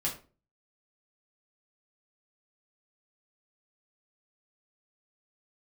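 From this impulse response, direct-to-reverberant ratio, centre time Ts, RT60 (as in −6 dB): −4.5 dB, 23 ms, 0.35 s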